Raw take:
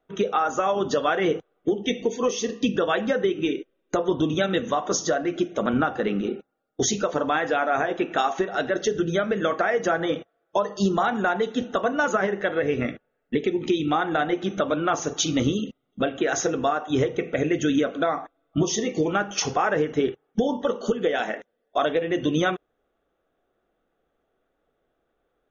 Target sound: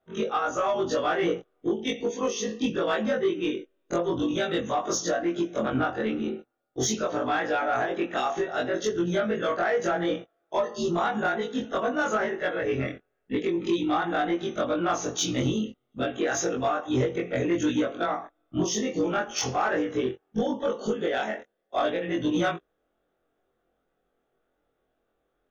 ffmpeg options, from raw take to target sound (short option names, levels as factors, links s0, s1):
-af "afftfilt=real='re':imag='-im':win_size=2048:overlap=0.75,aeval=exprs='0.211*(cos(1*acos(clip(val(0)/0.211,-1,1)))-cos(1*PI/2))+0.0133*(cos(5*acos(clip(val(0)/0.211,-1,1)))-cos(5*PI/2))':c=same"